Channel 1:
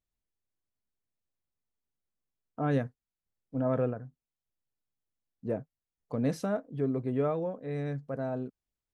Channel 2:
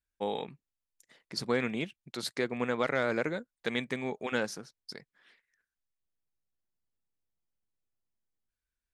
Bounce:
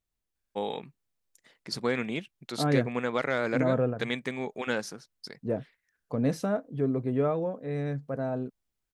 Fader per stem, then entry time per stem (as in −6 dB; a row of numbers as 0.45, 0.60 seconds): +2.5, +1.0 decibels; 0.00, 0.35 seconds